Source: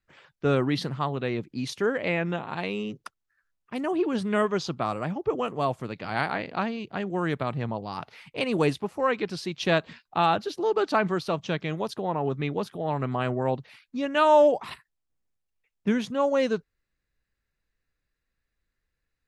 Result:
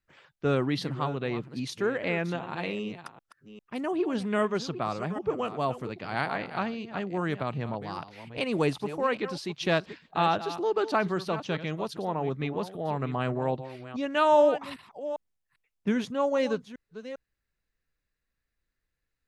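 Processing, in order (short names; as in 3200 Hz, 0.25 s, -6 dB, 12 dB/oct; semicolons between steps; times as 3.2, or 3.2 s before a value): reverse delay 0.399 s, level -12.5 dB; gain -2.5 dB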